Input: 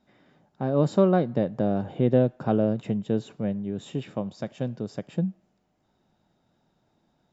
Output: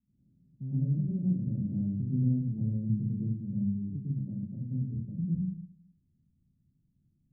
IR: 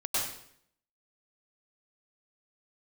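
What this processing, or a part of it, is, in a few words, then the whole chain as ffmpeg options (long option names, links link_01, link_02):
club heard from the street: -filter_complex "[0:a]asettb=1/sr,asplit=3[link_01][link_02][link_03];[link_01]atrim=end=4.834[link_04];[link_02]atrim=start=4.83:end=5.24,asetpts=PTS-STARTPTS,afade=type=in:duration=0.004:curve=qsin,afade=type=out:start_time=0.406:duration=0.004:curve=qsin,highpass=120[link_05];[link_03]atrim=start=5.236[link_06];[link_04][link_05]acrossfade=duration=0.004:curve1=hsin:curve2=qsin[link_07];[link_07][link_06]acrossfade=duration=0.004:curve1=qsin:curve2=hsin,alimiter=limit=-15.5dB:level=0:latency=1:release=147,lowpass=frequency=190:width=0.5412,lowpass=frequency=190:width=1.3066[link_08];[1:a]atrim=start_sample=2205[link_09];[link_08][link_09]afir=irnorm=-1:irlink=0,volume=-3dB"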